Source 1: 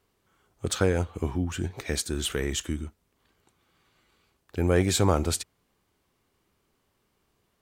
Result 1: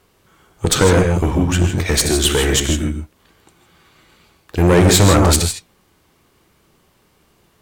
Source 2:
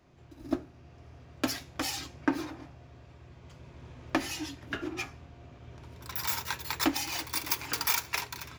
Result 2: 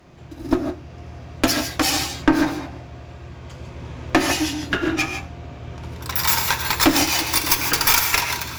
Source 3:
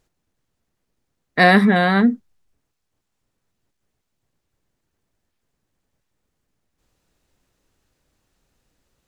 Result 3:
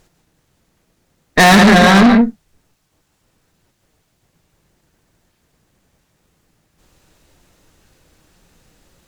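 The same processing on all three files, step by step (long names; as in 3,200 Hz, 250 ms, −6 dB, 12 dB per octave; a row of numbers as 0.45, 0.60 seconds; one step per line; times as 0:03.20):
flanger 1.9 Hz, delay 5.4 ms, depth 1.2 ms, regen +81%
reverb whose tail is shaped and stops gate 180 ms rising, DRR 6 dB
tube saturation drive 27 dB, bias 0.55
normalise the peak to −3 dBFS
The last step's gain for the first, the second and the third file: +21.0, +20.0, +21.5 decibels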